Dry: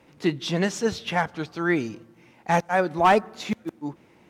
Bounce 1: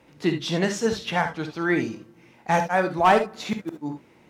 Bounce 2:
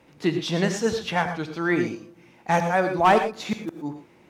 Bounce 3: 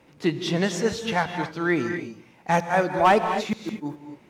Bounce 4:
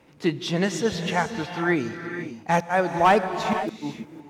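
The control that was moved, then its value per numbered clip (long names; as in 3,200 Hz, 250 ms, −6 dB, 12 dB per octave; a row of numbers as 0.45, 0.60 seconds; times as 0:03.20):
reverb whose tail is shaped and stops, gate: 90, 140, 280, 530 milliseconds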